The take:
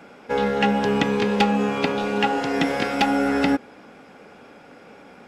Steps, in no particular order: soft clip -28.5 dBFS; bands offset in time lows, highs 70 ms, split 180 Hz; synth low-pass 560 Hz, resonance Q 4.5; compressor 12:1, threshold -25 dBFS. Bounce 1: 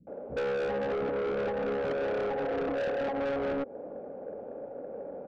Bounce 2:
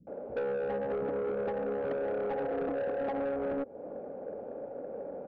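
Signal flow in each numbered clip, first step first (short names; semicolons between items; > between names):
bands offset in time > compressor > synth low-pass > soft clip; synth low-pass > compressor > bands offset in time > soft clip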